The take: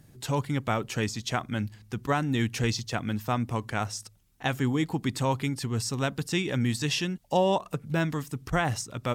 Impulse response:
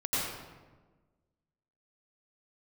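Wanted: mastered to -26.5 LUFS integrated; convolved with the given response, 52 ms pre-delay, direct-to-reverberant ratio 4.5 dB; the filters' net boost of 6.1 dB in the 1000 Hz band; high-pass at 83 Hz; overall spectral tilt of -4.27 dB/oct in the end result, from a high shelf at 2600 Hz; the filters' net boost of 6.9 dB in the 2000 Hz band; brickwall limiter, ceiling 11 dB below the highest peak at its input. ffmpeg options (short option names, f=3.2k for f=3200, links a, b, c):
-filter_complex "[0:a]highpass=83,equalizer=f=1k:t=o:g=6,equalizer=f=2k:t=o:g=5,highshelf=f=2.6k:g=4.5,alimiter=limit=-16dB:level=0:latency=1,asplit=2[a][b];[1:a]atrim=start_sample=2205,adelay=52[c];[b][c]afir=irnorm=-1:irlink=0,volume=-13dB[d];[a][d]amix=inputs=2:normalize=0,volume=1.5dB"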